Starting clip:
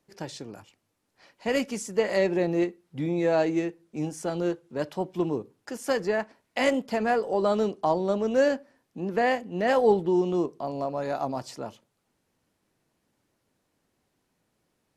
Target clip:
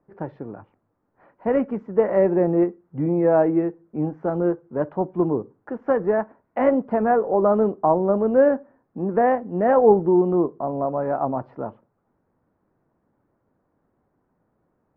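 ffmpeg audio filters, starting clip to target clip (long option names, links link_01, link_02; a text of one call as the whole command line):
ffmpeg -i in.wav -af "lowpass=frequency=1400:width=0.5412,lowpass=frequency=1400:width=1.3066,volume=6dB" out.wav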